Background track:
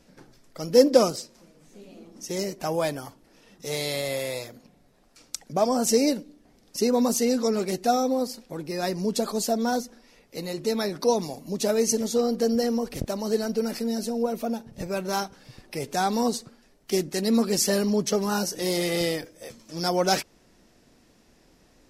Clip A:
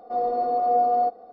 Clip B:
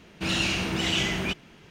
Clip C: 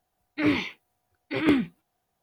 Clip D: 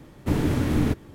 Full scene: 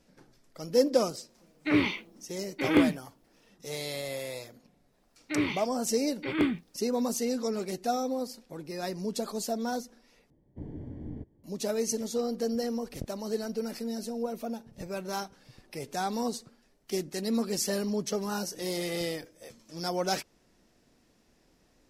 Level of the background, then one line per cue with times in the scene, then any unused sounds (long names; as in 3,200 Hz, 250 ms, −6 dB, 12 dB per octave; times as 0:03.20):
background track −7 dB
0:01.28: mix in C −1 dB
0:04.92: mix in C −5 dB
0:10.30: overwrite with D −17.5 dB + moving average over 34 samples
not used: A, B